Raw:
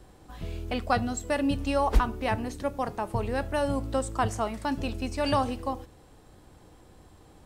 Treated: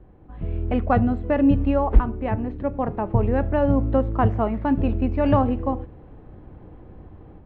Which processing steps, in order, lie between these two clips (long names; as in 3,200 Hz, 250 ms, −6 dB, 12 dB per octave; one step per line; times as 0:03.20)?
low-pass filter 2,600 Hz 24 dB per octave
tilt shelving filter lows +6.5 dB, about 720 Hz
automatic gain control gain up to 7.5 dB
level −2 dB